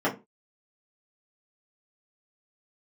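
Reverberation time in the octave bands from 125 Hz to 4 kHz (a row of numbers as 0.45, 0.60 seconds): 0.25, 0.30, 0.30, 0.25, 0.20, 0.15 seconds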